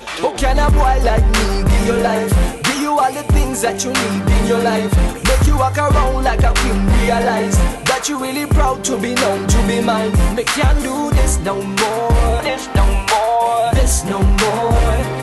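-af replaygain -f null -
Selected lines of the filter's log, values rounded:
track_gain = -1.5 dB
track_peak = 0.329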